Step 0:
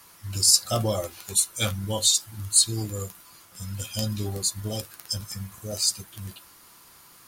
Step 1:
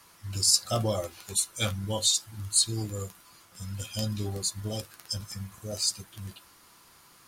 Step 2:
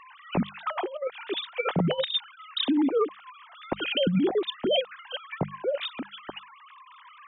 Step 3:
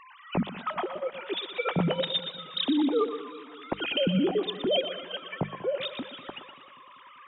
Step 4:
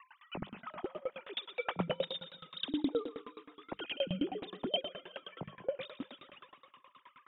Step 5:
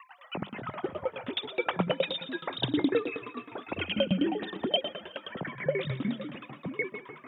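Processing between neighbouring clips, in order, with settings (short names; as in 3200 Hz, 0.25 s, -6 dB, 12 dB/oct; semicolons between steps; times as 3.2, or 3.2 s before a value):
high shelf 12000 Hz -10 dB; gain -2.5 dB
sine-wave speech; notches 50/100/150/200 Hz; negative-ratio compressor -30 dBFS, ratio -0.5; gain +6 dB
thinning echo 0.12 s, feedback 47%, high-pass 400 Hz, level -9 dB; warbling echo 0.194 s, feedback 64%, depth 65 cents, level -18 dB; gain -1.5 dB
dB-ramp tremolo decaying 9.5 Hz, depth 26 dB; gain -2 dB
echoes that change speed 91 ms, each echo -6 st, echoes 2, each echo -6 dB; HPF 97 Hz; gain +6.5 dB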